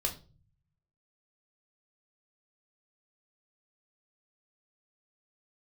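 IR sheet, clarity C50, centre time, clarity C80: 13.0 dB, 14 ms, 18.0 dB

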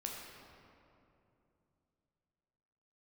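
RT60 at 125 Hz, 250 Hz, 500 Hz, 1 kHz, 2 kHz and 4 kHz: 3.8, 3.5, 3.0, 2.6, 2.1, 1.5 seconds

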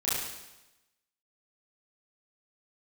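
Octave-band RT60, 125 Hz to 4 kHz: 0.95, 1.0, 1.0, 1.0, 1.0, 1.0 seconds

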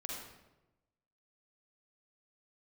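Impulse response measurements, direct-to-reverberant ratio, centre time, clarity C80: −3.0 dB, 69 ms, 2.5 dB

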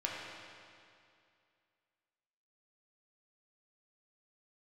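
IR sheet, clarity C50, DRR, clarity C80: −1.0 dB, −4.0 dB, 0.5 dB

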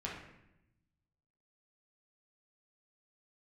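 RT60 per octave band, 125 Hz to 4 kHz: 1.6, 1.3, 0.90, 0.80, 0.85, 0.65 seconds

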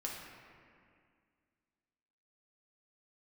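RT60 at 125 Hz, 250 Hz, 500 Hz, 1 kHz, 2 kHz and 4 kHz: 2.3, 2.6, 2.2, 2.1, 2.1, 1.5 seconds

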